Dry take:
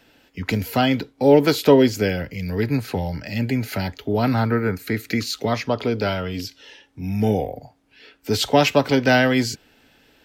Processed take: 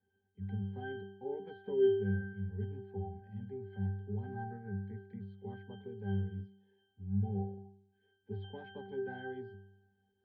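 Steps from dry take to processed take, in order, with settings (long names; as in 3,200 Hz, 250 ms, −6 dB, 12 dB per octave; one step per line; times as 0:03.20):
high-frequency loss of the air 350 metres
resonances in every octave G, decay 0.76 s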